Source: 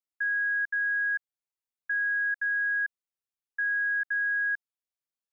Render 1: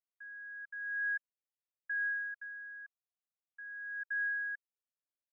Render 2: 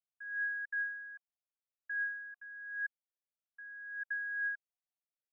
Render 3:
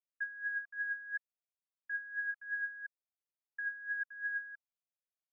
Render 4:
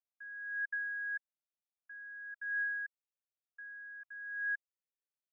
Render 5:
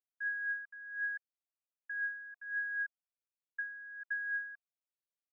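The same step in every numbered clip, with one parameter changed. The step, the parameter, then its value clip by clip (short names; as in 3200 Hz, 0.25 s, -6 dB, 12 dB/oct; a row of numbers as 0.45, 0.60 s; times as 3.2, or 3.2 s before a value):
vowel sweep, rate: 0.32, 0.82, 2.9, 0.52, 1.3 Hz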